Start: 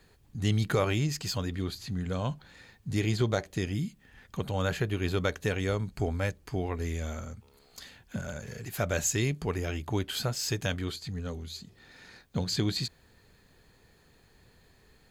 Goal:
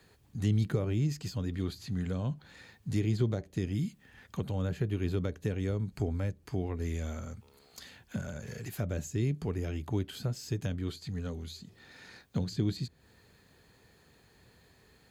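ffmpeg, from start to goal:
ffmpeg -i in.wav -filter_complex "[0:a]highpass=60,acrossover=split=410[link_01][link_02];[link_02]acompressor=threshold=-44dB:ratio=6[link_03];[link_01][link_03]amix=inputs=2:normalize=0" out.wav

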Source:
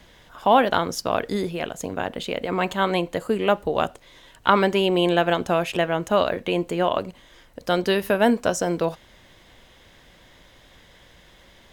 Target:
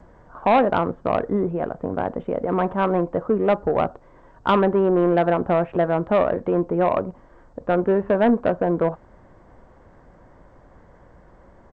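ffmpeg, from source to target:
ffmpeg -i in.wav -af "lowpass=frequency=1300:width=0.5412,lowpass=frequency=1300:width=1.3066,aresample=8000,asoftclip=type=tanh:threshold=-15dB,aresample=44100,volume=4.5dB" -ar 16000 -c:a g722 out.g722

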